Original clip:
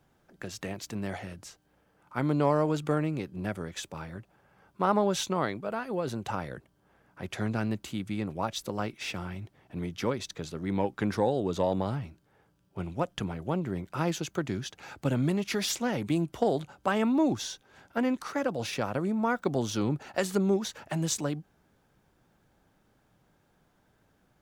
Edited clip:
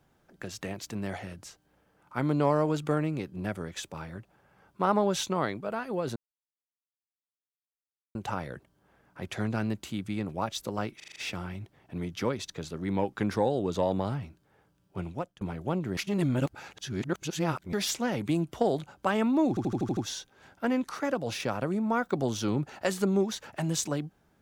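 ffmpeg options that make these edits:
-filter_complex "[0:a]asplit=16[a][b][c][d][e][f][g][h][i][j][k][l][m][n][o][p];[a]atrim=end=6.16,asetpts=PTS-STARTPTS,afade=t=out:st=6.156:d=0.004:c=hsin,apad=pad_dur=1.99[q];[b]atrim=start=6.16:end=9.012,asetpts=PTS-STARTPTS,afade=t=in:d=0.004:c=hsin[r];[c]atrim=start=8.968:end=9.012[s];[d]atrim=start=8.968:end=9.012[t];[e]atrim=start=8.968:end=9.012[u];[f]atrim=start=8.968:end=9.012[v];[g]atrim=start=8.968:end=13.22,asetpts=PTS-STARTPTS,afade=t=out:st=3.902:d=0.35[w];[h]atrim=start=13.22:end=13.782,asetpts=PTS-STARTPTS,afade=t=in:d=0.004:c=hsin[x];[i]atrim=start=13.778:end=15.542,asetpts=PTS-STARTPTS,areverse[y];[j]atrim=start=15.538:end=17.382[z];[k]atrim=start=17.298:end=17.382[aa];[l]atrim=start=17.298:end=17.382[ab];[m]atrim=start=17.298:end=17.382[ac];[n]atrim=start=17.298:end=17.382[ad];[o]atrim=start=17.298:end=17.382[ae];[p]atrim=start=17.298[af];[q][r]concat=n=2:v=0:a=1[ag];[ag][s]acrossfade=d=0.004:c1=hsin:c2=hsin[ah];[ah][t]acrossfade=d=0.004:c1=hsin:c2=hsin[ai];[ai][u]acrossfade=d=0.004:c1=hsin:c2=hsin[aj];[aj][v]acrossfade=d=0.004:c1=hsin:c2=hsin[ak];[w][x]concat=n=2:v=0:a=1[al];[ak][al]acrossfade=d=0.004:c1=hsin:c2=hsin[am];[am][y]acrossfade=d=0.004:c1=hsin:c2=hsin[an];[an][z]acrossfade=d=0.004:c1=hsin:c2=hsin[ao];[ao][aa]acrossfade=d=0.004:c1=hsin:c2=hsin[ap];[ap][ab]acrossfade=d=0.004:c1=hsin:c2=hsin[aq];[aq][ac]acrossfade=d=0.004:c1=hsin:c2=hsin[ar];[ar][ad]acrossfade=d=0.004:c1=hsin:c2=hsin[as];[as][ae]acrossfade=d=0.004:c1=hsin:c2=hsin[at];[at][af]acrossfade=d=0.004:c1=hsin:c2=hsin"

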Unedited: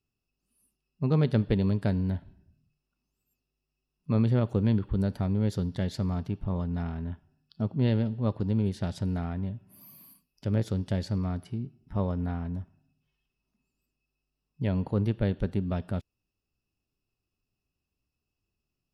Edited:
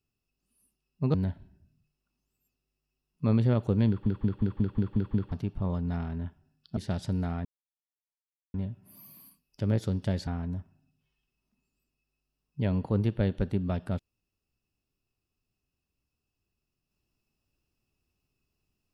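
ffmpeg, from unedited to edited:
-filter_complex "[0:a]asplit=13[a][b][c][d][e][f][g][h][i][j][k][l][m];[a]atrim=end=1.142[n];[b]atrim=start=1.998:end=4.922[o];[c]atrim=start=4.738:end=4.922[p];[d]atrim=start=4.738:end=4.922[q];[e]atrim=start=4.738:end=4.922[r];[f]atrim=start=4.738:end=4.922[s];[g]atrim=start=4.738:end=4.922[t];[h]atrim=start=4.738:end=4.922[u];[i]atrim=start=4.738:end=4.922[v];[j]atrim=start=6.178:end=7.632[w];[k]atrim=start=8.698:end=9.38,asetpts=PTS-STARTPTS,afade=t=out:st=0.678:d=0.004:c=hsin,apad=pad_dur=1.09[x];[l]atrim=start=9.38:end=11.112,asetpts=PTS-STARTPTS,afade=t=in:d=0.004:c=hsin[y];[m]atrim=start=12.288[z];[n][o]acrossfade=d=0.004:c1=hsin:c2=hsin[aa];[aa][p]acrossfade=d=0.004:c1=hsin:c2=hsin[ab];[ab][q]acrossfade=d=0.004:c1=hsin:c2=hsin[ac];[ac][r]acrossfade=d=0.004:c1=hsin:c2=hsin[ad];[ad][s]acrossfade=d=0.004:c1=hsin:c2=hsin[ae];[ae][t]acrossfade=d=0.004:c1=hsin:c2=hsin[af];[af][u]acrossfade=d=0.004:c1=hsin:c2=hsin[ag];[ag][v]acrossfade=d=0.004:c1=hsin:c2=hsin[ah];[ah][w]acrossfade=d=0.004:c1=hsin:c2=hsin[ai];[x][y]concat=n=2:v=0:a=1[aj];[ai][aj]acrossfade=d=0.004:c1=hsin:c2=hsin[ak];[ak][z]acrossfade=d=0.004:c1=hsin:c2=hsin"

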